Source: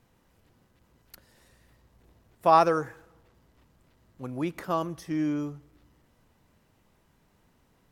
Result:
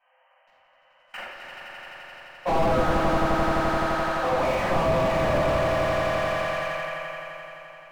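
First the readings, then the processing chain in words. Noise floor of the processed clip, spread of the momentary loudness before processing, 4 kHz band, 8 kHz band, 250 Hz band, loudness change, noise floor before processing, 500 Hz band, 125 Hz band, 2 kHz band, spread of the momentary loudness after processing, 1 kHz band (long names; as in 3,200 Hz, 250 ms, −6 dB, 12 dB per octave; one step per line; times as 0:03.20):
−61 dBFS, 18 LU, +12.5 dB, +9.0 dB, +3.0 dB, +2.5 dB, −67 dBFS, +8.0 dB, +9.5 dB, +14.5 dB, 17 LU, +3.5 dB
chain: brick-wall band-pass 500–3,200 Hz
reversed playback
downward compressor 10 to 1, threshold −31 dBFS, peak gain reduction 17.5 dB
reversed playback
leveller curve on the samples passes 3
on a send: echo that builds up and dies away 86 ms, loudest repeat 5, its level −8 dB
on the sum: rectangular room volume 520 cubic metres, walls mixed, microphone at 8 metres
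slew-rate limiting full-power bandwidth 66 Hz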